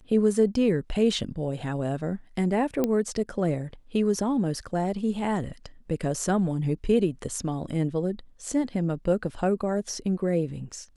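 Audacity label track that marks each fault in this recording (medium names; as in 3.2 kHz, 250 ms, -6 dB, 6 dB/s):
2.840000	2.840000	pop -12 dBFS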